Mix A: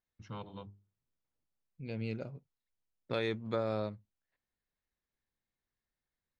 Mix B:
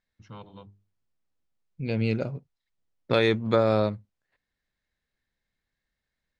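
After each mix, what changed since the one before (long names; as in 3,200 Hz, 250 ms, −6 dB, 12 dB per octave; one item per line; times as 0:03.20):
second voice +12.0 dB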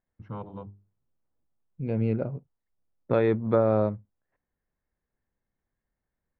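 first voice +7.0 dB
master: add low-pass filter 1,200 Hz 12 dB per octave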